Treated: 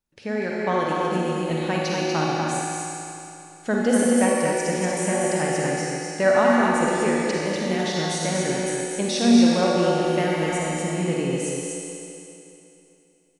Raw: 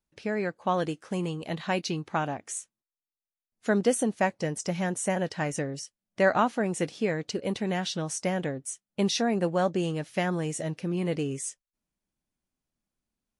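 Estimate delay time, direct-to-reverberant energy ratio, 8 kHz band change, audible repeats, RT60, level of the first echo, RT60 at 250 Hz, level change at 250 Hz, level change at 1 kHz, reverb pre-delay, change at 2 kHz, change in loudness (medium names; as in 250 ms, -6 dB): 243 ms, -6.0 dB, +7.0 dB, 1, 2.9 s, -3.5 dB, 2.9 s, +8.0 dB, +6.5 dB, 40 ms, +7.0 dB, +7.0 dB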